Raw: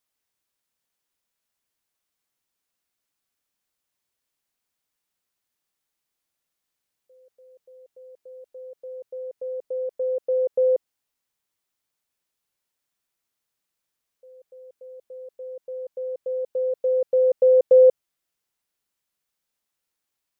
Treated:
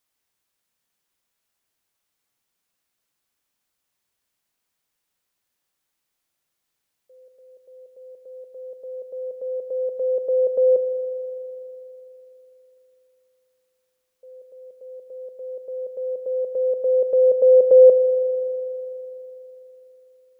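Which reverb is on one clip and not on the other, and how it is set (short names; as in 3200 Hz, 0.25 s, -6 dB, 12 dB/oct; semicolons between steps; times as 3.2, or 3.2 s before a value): spring tank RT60 3.5 s, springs 41 ms, chirp 75 ms, DRR 7.5 dB; gain +3.5 dB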